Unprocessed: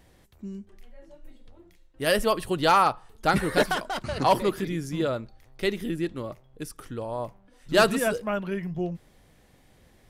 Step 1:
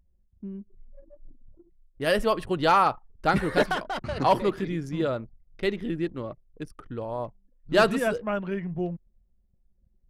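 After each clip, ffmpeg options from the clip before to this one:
-af "highshelf=f=5.5k:g=-11,anlmdn=0.0398"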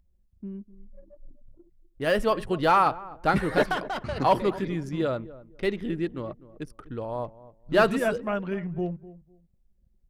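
-filter_complex "[0:a]acrossover=split=2800[a][b];[b]asoftclip=type=tanh:threshold=-36dB[c];[a][c]amix=inputs=2:normalize=0,asplit=2[d][e];[e]adelay=251,lowpass=f=830:p=1,volume=-16.5dB,asplit=2[f][g];[g]adelay=251,lowpass=f=830:p=1,volume=0.24[h];[d][f][h]amix=inputs=3:normalize=0"

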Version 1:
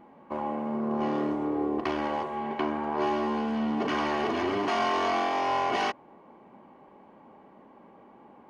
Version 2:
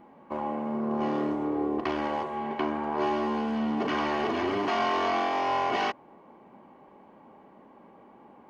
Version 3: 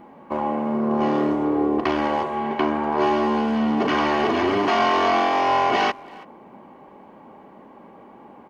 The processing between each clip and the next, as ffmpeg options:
-filter_complex "[0:a]acrossover=split=5800[a][b];[b]acompressor=threshold=-59dB:ratio=4:attack=1:release=60[c];[a][c]amix=inputs=2:normalize=0"
-filter_complex "[0:a]asplit=2[a][b];[b]adelay=330,highpass=300,lowpass=3.4k,asoftclip=type=hard:threshold=-24.5dB,volume=-21dB[c];[a][c]amix=inputs=2:normalize=0,volume=7.5dB"

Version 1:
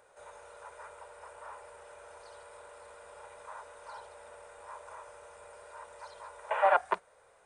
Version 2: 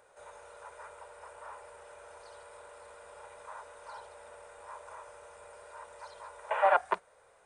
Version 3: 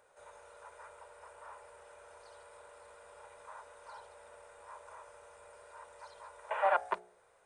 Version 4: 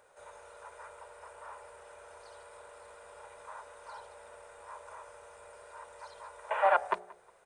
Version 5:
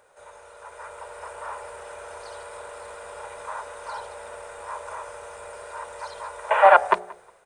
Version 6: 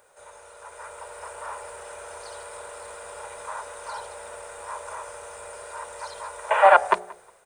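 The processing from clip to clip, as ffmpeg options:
-af anull
-af "bandreject=f=60.8:t=h:w=4,bandreject=f=121.6:t=h:w=4,bandreject=f=182.4:t=h:w=4,bandreject=f=243.2:t=h:w=4,bandreject=f=304:t=h:w=4,bandreject=f=364.8:t=h:w=4,bandreject=f=425.6:t=h:w=4,bandreject=f=486.4:t=h:w=4,bandreject=f=547.2:t=h:w=4,bandreject=f=608:t=h:w=4,bandreject=f=668.8:t=h:w=4,bandreject=f=729.6:t=h:w=4,bandreject=f=790.4:t=h:w=4,bandreject=f=851.2:t=h:w=4,volume=-4dB"
-filter_complex "[0:a]asplit=2[a][b];[b]adelay=181,lowpass=f=2k:p=1,volume=-20.5dB,asplit=2[c][d];[d]adelay=181,lowpass=f=2k:p=1,volume=0.31[e];[a][c][e]amix=inputs=3:normalize=0,volume=3.5dB"
-af "dynaudnorm=f=590:g=3:m=8.5dB,volume=4dB"
-af "highshelf=f=6.8k:g=10,volume=-1dB"

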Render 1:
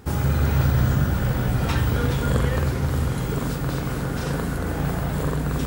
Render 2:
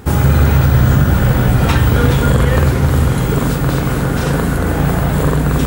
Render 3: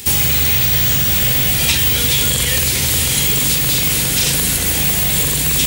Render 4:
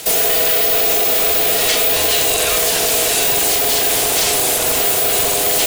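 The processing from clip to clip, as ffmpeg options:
-af "equalizer=f=5.1k:t=o:w=0.59:g=-3.5,alimiter=level_in=11.5dB:limit=-1dB:release=50:level=0:latency=1,volume=-1dB"
-filter_complex "[0:a]acrossover=split=230|530|4100[a][b][c][d];[a]acompressor=threshold=-16dB:ratio=4[e];[b]acompressor=threshold=-27dB:ratio=4[f];[c]acompressor=threshold=-24dB:ratio=4[g];[d]acompressor=threshold=-33dB:ratio=4[h];[e][f][g][h]amix=inputs=4:normalize=0,aexciter=amount=5.5:drive=10:freq=2.1k,volume=-5.5dB"
-af "asoftclip=type=hard:threshold=-12dB,aeval=exprs='val(0)*sin(2*PI*560*n/s)':c=same,volume=4dB"

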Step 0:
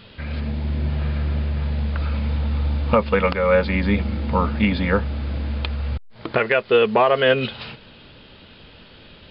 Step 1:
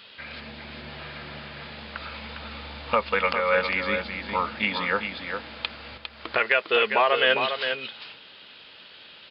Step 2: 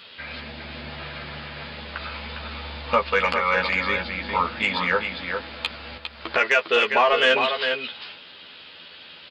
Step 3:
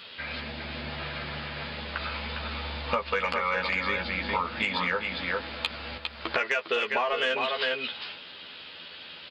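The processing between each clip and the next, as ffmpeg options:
-af "highpass=f=1.5k:p=1,aecho=1:1:404:0.447,volume=2dB"
-filter_complex "[0:a]asoftclip=type=tanh:threshold=-10dB,asplit=2[a][b];[b]adelay=12,volume=-4dB[c];[a][c]amix=inputs=2:normalize=0,volume=2dB"
-af "acompressor=threshold=-24dB:ratio=6"

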